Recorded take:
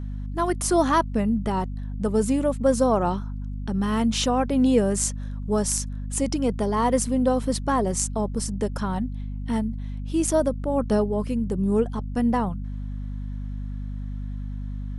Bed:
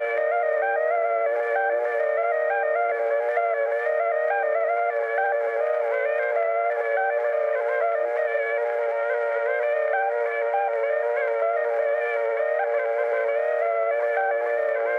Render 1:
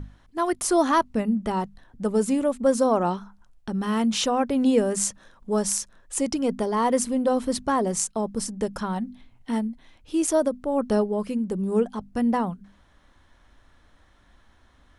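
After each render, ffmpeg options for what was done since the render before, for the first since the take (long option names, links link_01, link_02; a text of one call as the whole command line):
ffmpeg -i in.wav -af "bandreject=frequency=50:width_type=h:width=6,bandreject=frequency=100:width_type=h:width=6,bandreject=frequency=150:width_type=h:width=6,bandreject=frequency=200:width_type=h:width=6,bandreject=frequency=250:width_type=h:width=6" out.wav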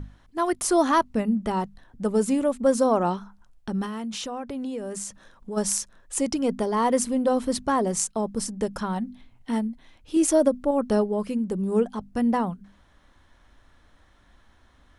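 ffmpeg -i in.wav -filter_complex "[0:a]asplit=3[link_01][link_02][link_03];[link_01]afade=type=out:start_time=3.85:duration=0.02[link_04];[link_02]acompressor=threshold=-31dB:ratio=4:attack=3.2:release=140:knee=1:detection=peak,afade=type=in:start_time=3.85:duration=0.02,afade=type=out:start_time=5.56:duration=0.02[link_05];[link_03]afade=type=in:start_time=5.56:duration=0.02[link_06];[link_04][link_05][link_06]amix=inputs=3:normalize=0,asettb=1/sr,asplit=3[link_07][link_08][link_09];[link_07]atrim=end=10.164[link_10];[link_08]atrim=start=10.16:end=10.71,asetpts=PTS-STARTPTS,afade=type=in:duration=0.004:curve=qsin,afade=type=out:start_time=0.546:duration=0.004:curve=qsin,aecho=1:1:3.6:0.65,atrim=end_sample=24255[link_11];[link_09]atrim=start=10.706[link_12];[link_10][link_11]acrossfade=duration=0.004:curve1=hsin:curve2=qsin[link_13];[link_13][link_12]acrossfade=duration=0.004:curve1=qsin:curve2=hsin" out.wav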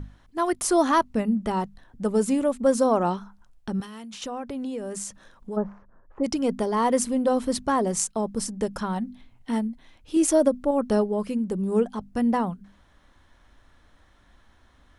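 ffmpeg -i in.wav -filter_complex "[0:a]asettb=1/sr,asplit=3[link_01][link_02][link_03];[link_01]atrim=end=3.804[link_04];[link_02]atrim=start=3.8:end=4.22,asetpts=PTS-STARTPTS,afade=type=in:duration=0.004:curve=qsin,afade=type=out:start_time=0.416:duration=0.004:curve=qsin,acrossover=split=780|2100[link_05][link_06][link_07];[link_05]acompressor=threshold=-40dB:ratio=4[link_08];[link_06]acompressor=threshold=-50dB:ratio=4[link_09];[link_07]acompressor=threshold=-43dB:ratio=4[link_10];[link_08][link_09][link_10]amix=inputs=3:normalize=0[link_11];[link_03]atrim=start=4.216[link_12];[link_04][link_11]acrossfade=duration=0.004:curve1=hsin:curve2=qsin[link_13];[link_13][link_12]acrossfade=duration=0.004:curve1=qsin:curve2=hsin,asplit=3[link_14][link_15][link_16];[link_14]afade=type=out:start_time=5.55:duration=0.02[link_17];[link_15]lowpass=frequency=1300:width=0.5412,lowpass=frequency=1300:width=1.3066,afade=type=in:start_time=5.55:duration=0.02,afade=type=out:start_time=6.23:duration=0.02[link_18];[link_16]afade=type=in:start_time=6.23:duration=0.02[link_19];[link_17][link_18][link_19]amix=inputs=3:normalize=0" out.wav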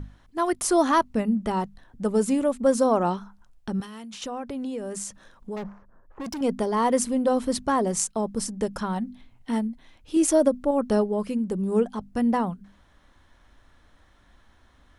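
ffmpeg -i in.wav -filter_complex "[0:a]asettb=1/sr,asplit=3[link_01][link_02][link_03];[link_01]atrim=end=5.564[link_04];[link_02]atrim=start=5.56:end=6.41,asetpts=PTS-STARTPTS,afade=type=in:duration=0.004:curve=qsin,afade=type=out:start_time=0.846:duration=0.004:curve=qsin,asoftclip=type=hard:threshold=-30.5dB[link_05];[link_03]atrim=start=6.406[link_06];[link_04][link_05]acrossfade=duration=0.004:curve1=hsin:curve2=qsin[link_07];[link_07][link_06]acrossfade=duration=0.004:curve1=qsin:curve2=hsin" out.wav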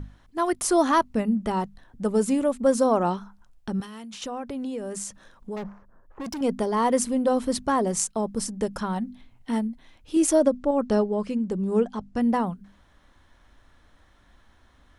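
ffmpeg -i in.wav -filter_complex "[0:a]asettb=1/sr,asplit=3[link_01][link_02][link_03];[link_01]atrim=end=10.394[link_04];[link_02]atrim=start=10.39:end=12.21,asetpts=PTS-STARTPTS,afade=type=in:duration=0.004:curve=qsin,afade=type=out:start_time=1.816:duration=0.004:curve=qsin,lowpass=frequency=8100:width=0.5412,lowpass=frequency=8100:width=1.3066[link_05];[link_03]atrim=start=12.206[link_06];[link_04][link_05]acrossfade=duration=0.004:curve1=hsin:curve2=qsin[link_07];[link_07][link_06]acrossfade=duration=0.004:curve1=qsin:curve2=hsin" out.wav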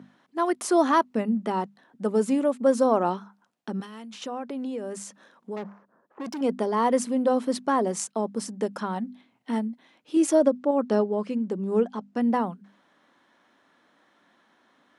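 ffmpeg -i in.wav -af "highpass=frequency=200:width=0.5412,highpass=frequency=200:width=1.3066,highshelf=frequency=5900:gain=-9" out.wav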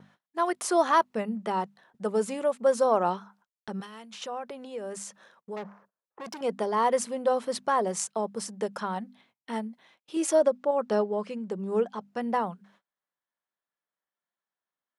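ffmpeg -i in.wav -af "agate=range=-31dB:threshold=-57dB:ratio=16:detection=peak,equalizer=frequency=270:width_type=o:width=0.57:gain=-14.5" out.wav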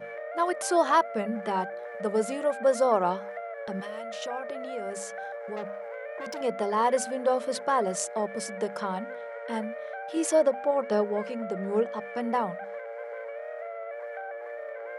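ffmpeg -i in.wav -i bed.wav -filter_complex "[1:a]volume=-14.5dB[link_01];[0:a][link_01]amix=inputs=2:normalize=0" out.wav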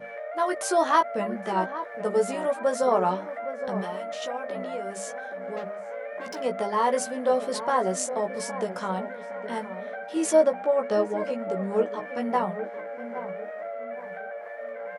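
ffmpeg -i in.wav -filter_complex "[0:a]asplit=2[link_01][link_02];[link_02]adelay=16,volume=-4.5dB[link_03];[link_01][link_03]amix=inputs=2:normalize=0,asplit=2[link_04][link_05];[link_05]adelay=815,lowpass=frequency=970:poles=1,volume=-10dB,asplit=2[link_06][link_07];[link_07]adelay=815,lowpass=frequency=970:poles=1,volume=0.39,asplit=2[link_08][link_09];[link_09]adelay=815,lowpass=frequency=970:poles=1,volume=0.39,asplit=2[link_10][link_11];[link_11]adelay=815,lowpass=frequency=970:poles=1,volume=0.39[link_12];[link_06][link_08][link_10][link_12]amix=inputs=4:normalize=0[link_13];[link_04][link_13]amix=inputs=2:normalize=0" out.wav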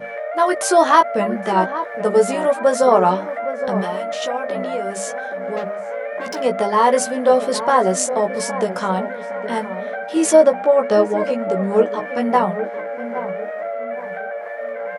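ffmpeg -i in.wav -af "volume=9dB,alimiter=limit=-1dB:level=0:latency=1" out.wav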